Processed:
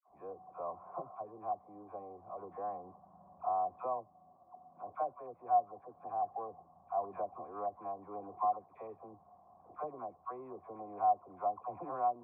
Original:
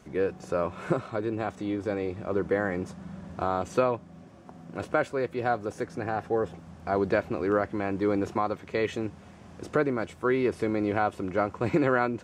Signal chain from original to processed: local Wiener filter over 15 samples; phase dispersion lows, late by 89 ms, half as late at 790 Hz; in parallel at -10.5 dB: saturation -27 dBFS, distortion -9 dB; on the sum: cascade formant filter a

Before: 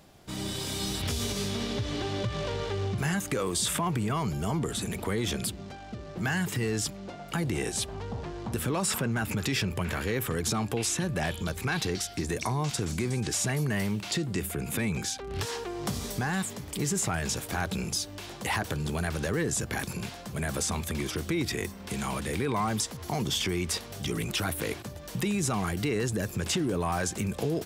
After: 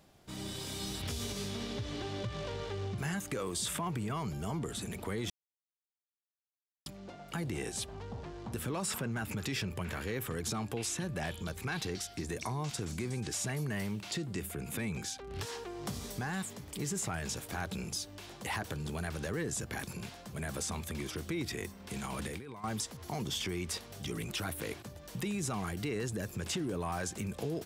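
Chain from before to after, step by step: 5.30–6.86 s: mute; 21.96–22.64 s: compressor with a negative ratio -33 dBFS, ratio -0.5; trim -7 dB

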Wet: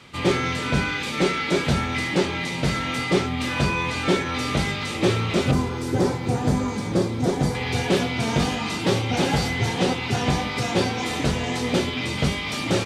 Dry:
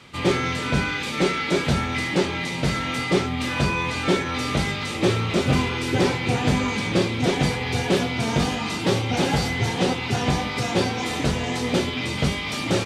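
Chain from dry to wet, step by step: 5.51–7.55 s: peaking EQ 2.7 kHz -13 dB 1.4 oct

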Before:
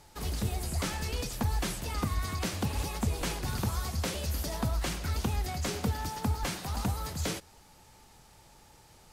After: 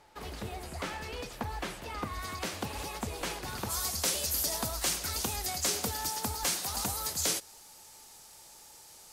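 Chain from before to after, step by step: tone controls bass -11 dB, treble -10 dB, from 2.13 s treble -2 dB, from 3.69 s treble +11 dB

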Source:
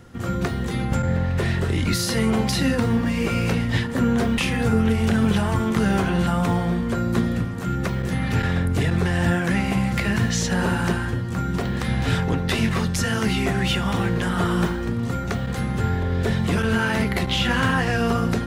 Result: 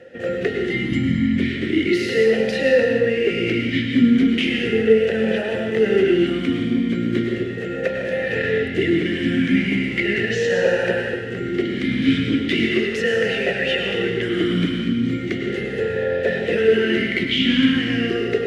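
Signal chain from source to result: 0.70–1.36 s: comb 1 ms, depth 72%; in parallel at +2.5 dB: gain riding 2 s; on the sum: reverberation, pre-delay 94 ms, DRR 2 dB; talking filter e-i 0.37 Hz; trim +7 dB

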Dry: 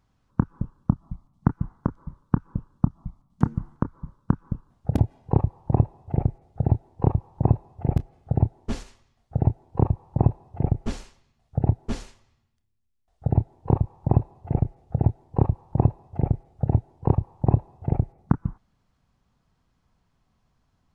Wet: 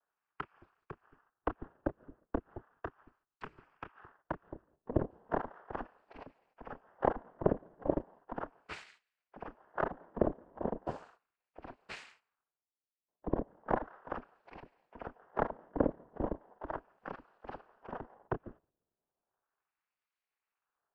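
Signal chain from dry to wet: high-pass 150 Hz 12 dB/octave; gate -55 dBFS, range -11 dB; LFO band-pass sine 0.36 Hz 380–2300 Hz; noise-vocoded speech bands 8; ring modulator 130 Hz; trim +5.5 dB

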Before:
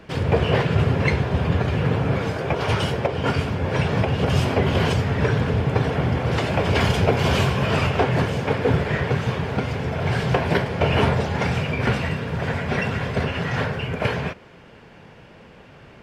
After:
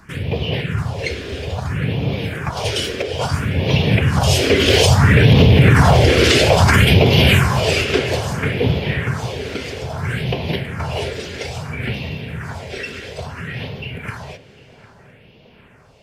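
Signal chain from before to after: Doppler pass-by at 5.76 s, 5 m/s, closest 2.7 m; treble shelf 2 kHz +8.5 dB; in parallel at -1 dB: compression, threshold -49 dBFS, peak gain reduction 30.5 dB; on the sum: phase shifter stages 4, 0.6 Hz, lowest notch 140–1500 Hz; on a send: tape echo 755 ms, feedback 67%, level -15.5 dB, low-pass 1.6 kHz; on the sum: loudness maximiser +17 dB; trim -1 dB

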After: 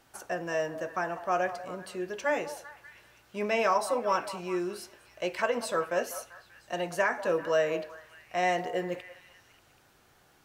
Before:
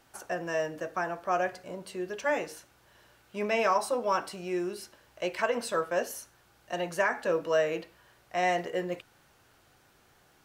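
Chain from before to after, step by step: repeats whose band climbs or falls 195 ms, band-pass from 790 Hz, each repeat 0.7 oct, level -11 dB

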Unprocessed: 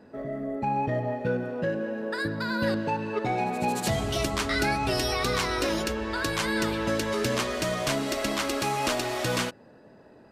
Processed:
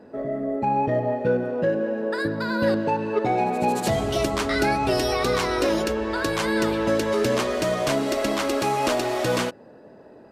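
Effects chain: peaking EQ 480 Hz +7 dB 2.3 oct

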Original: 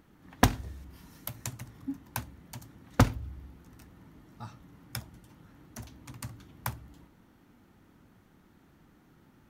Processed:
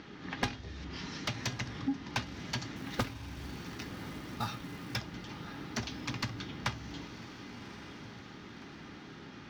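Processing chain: steep low-pass 5.7 kHz 36 dB/octave; peaking EQ 870 Hz -11.5 dB 2.7 oct; compression 4:1, threshold -44 dBFS, peak gain reduction 21.5 dB; overdrive pedal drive 36 dB, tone 2.9 kHz, clips at -11.5 dBFS; 2.76–4.96 s: short-mantissa float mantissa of 2-bit; feedback comb 410 Hz, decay 0.16 s, harmonics all, mix 60%; echo that smears into a reverb 1127 ms, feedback 47%, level -12.5 dB; trim +2 dB

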